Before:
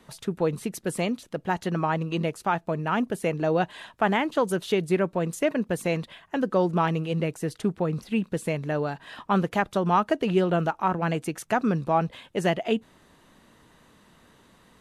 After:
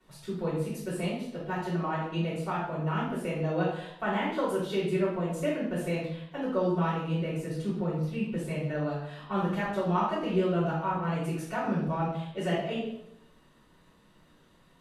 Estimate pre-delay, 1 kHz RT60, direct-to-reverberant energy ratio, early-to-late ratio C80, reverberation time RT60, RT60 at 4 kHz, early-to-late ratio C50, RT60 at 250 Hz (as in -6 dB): 3 ms, 0.70 s, -14.5 dB, 6.0 dB, 0.75 s, 0.70 s, 1.5 dB, 0.80 s